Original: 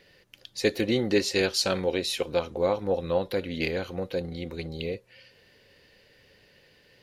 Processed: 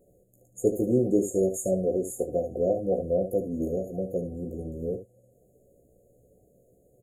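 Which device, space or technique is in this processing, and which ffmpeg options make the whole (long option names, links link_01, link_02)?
slapback doubling: -filter_complex "[0:a]asplit=3[link_01][link_02][link_03];[link_02]adelay=16,volume=-5dB[link_04];[link_03]adelay=74,volume=-10dB[link_05];[link_01][link_04][link_05]amix=inputs=3:normalize=0,afftfilt=real='re*(1-between(b*sr/4096,750,6500))':imag='im*(1-between(b*sr/4096,750,6500))':win_size=4096:overlap=0.75"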